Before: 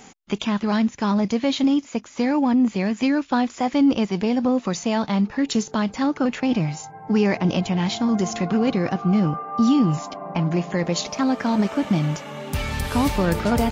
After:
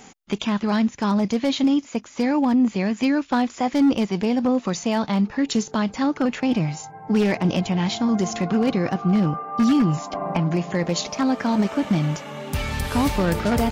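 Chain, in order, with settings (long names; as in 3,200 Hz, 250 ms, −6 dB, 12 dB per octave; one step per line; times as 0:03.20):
wave folding −12 dBFS
0:10.13–0:10.73: multiband upward and downward compressor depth 70%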